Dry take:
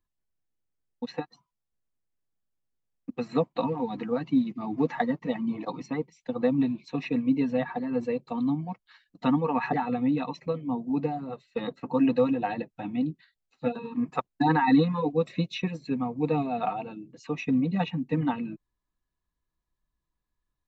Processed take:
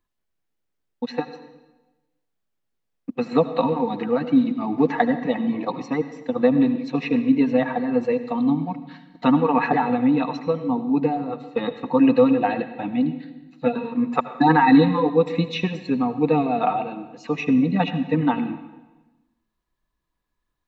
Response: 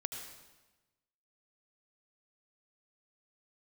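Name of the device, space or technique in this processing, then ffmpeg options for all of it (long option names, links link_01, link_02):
filtered reverb send: -filter_complex "[0:a]asplit=2[link_01][link_02];[link_02]highpass=160,lowpass=5200[link_03];[1:a]atrim=start_sample=2205[link_04];[link_03][link_04]afir=irnorm=-1:irlink=0,volume=-2dB[link_05];[link_01][link_05]amix=inputs=2:normalize=0,volume=3dB"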